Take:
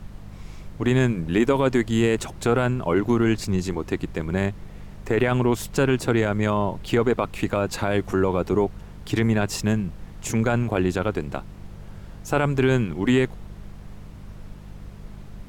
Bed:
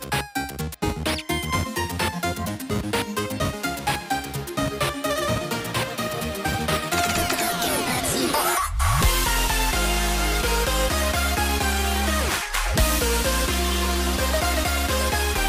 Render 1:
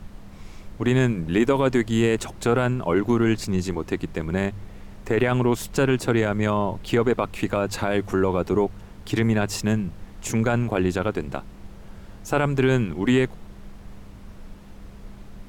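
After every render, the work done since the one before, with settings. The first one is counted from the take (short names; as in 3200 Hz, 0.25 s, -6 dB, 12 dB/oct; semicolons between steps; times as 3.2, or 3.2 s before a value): de-hum 50 Hz, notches 3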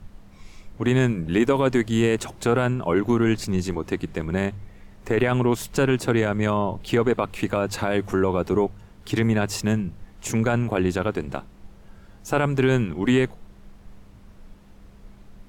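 noise print and reduce 6 dB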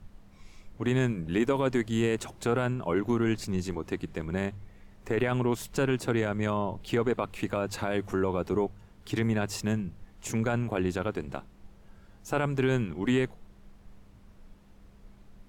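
gain -6.5 dB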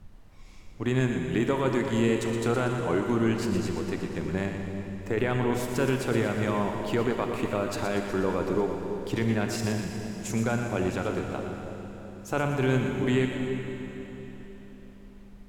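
split-band echo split 680 Hz, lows 0.33 s, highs 0.119 s, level -8 dB; Schroeder reverb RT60 3.8 s, combs from 31 ms, DRR 5 dB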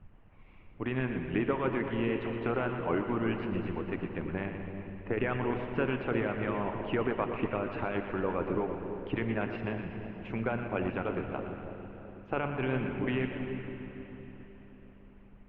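elliptic low-pass 2800 Hz, stop band 80 dB; harmonic-percussive split harmonic -8 dB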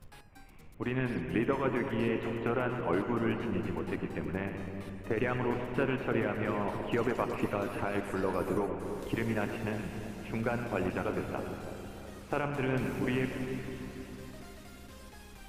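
add bed -30 dB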